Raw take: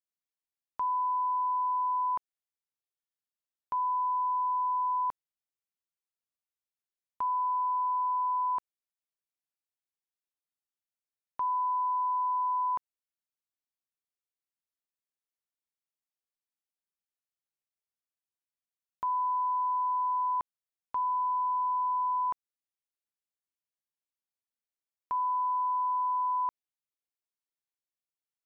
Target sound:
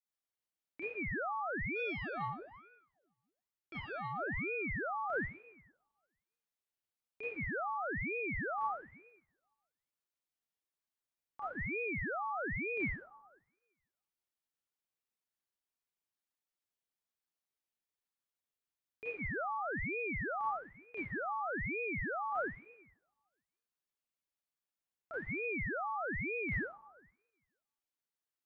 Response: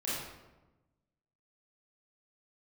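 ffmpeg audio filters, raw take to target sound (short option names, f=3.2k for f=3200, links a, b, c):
-filter_complex "[0:a]alimiter=level_in=7dB:limit=-24dB:level=0:latency=1,volume=-7dB,asplit=3[a][b][c];[a]afade=t=out:st=1.75:d=0.02[d];[b]aeval=exprs='(tanh(44.7*val(0)+0.5)-tanh(0.5))/44.7':c=same,afade=t=in:st=1.75:d=0.02,afade=t=out:st=4:d=0.02[e];[c]afade=t=in:st=4:d=0.02[f];[d][e][f]amix=inputs=3:normalize=0[g];[1:a]atrim=start_sample=2205[h];[g][h]afir=irnorm=-1:irlink=0,aeval=exprs='val(0)*sin(2*PI*800*n/s+800*0.85/1.1*sin(2*PI*1.1*n/s))':c=same,volume=-2dB"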